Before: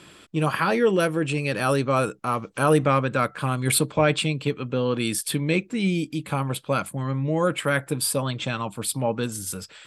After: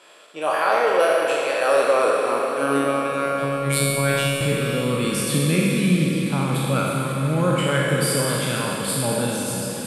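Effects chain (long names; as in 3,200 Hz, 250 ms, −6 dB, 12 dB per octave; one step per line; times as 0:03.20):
peak hold with a decay on every bin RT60 1.30 s
high-pass filter sweep 600 Hz → 150 Hz, 0:01.55–0:03.66
0:02.39–0:04.41: phases set to zero 139 Hz
on a send: feedback delay with all-pass diffusion 510 ms, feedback 60%, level −11.5 dB
on the sum: four-comb reverb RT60 3 s, combs from 33 ms, DRR 2 dB
level −4 dB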